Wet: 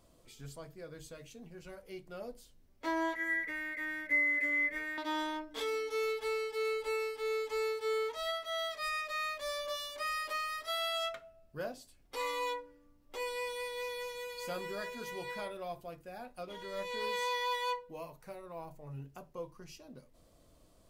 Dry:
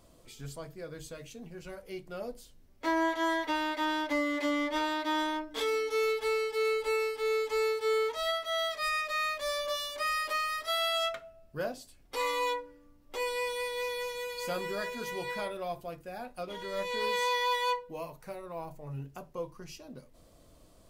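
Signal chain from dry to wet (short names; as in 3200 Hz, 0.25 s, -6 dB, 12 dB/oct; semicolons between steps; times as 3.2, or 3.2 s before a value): 3.15–4.98 EQ curve 120 Hz 0 dB, 190 Hz +9 dB, 290 Hz -9 dB, 490 Hz 0 dB, 830 Hz -24 dB, 1400 Hz -7 dB, 2000 Hz +14 dB, 3000 Hz -16 dB, 4700 Hz -15 dB, 9900 Hz -1 dB; gain -5 dB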